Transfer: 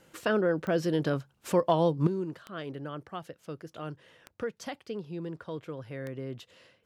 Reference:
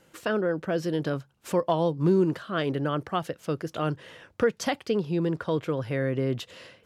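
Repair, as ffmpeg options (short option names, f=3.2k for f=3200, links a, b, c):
-af "adeclick=t=4,asetnsamples=n=441:p=0,asendcmd='2.07 volume volume 11dB',volume=0dB"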